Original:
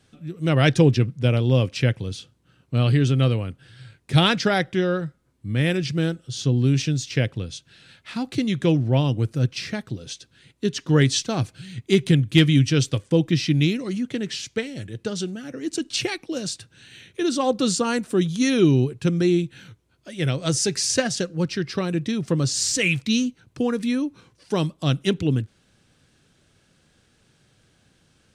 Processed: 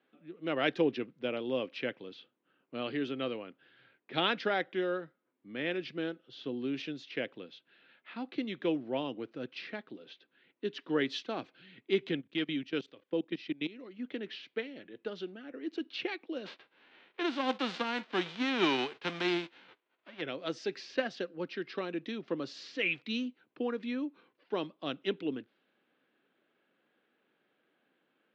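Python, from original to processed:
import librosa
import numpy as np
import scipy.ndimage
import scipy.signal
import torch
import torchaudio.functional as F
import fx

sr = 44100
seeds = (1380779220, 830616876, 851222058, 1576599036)

y = fx.level_steps(x, sr, step_db=18, at=(12.2, 13.98), fade=0.02)
y = fx.envelope_flatten(y, sr, power=0.3, at=(16.45, 20.2), fade=0.02)
y = fx.high_shelf(y, sr, hz=5400.0, db=7.0, at=(21.63, 22.22))
y = scipy.signal.sosfilt(scipy.signal.butter(4, 3600.0, 'lowpass', fs=sr, output='sos'), y)
y = fx.env_lowpass(y, sr, base_hz=2700.0, full_db=-17.0)
y = scipy.signal.sosfilt(scipy.signal.butter(4, 260.0, 'highpass', fs=sr, output='sos'), y)
y = F.gain(torch.from_numpy(y), -9.0).numpy()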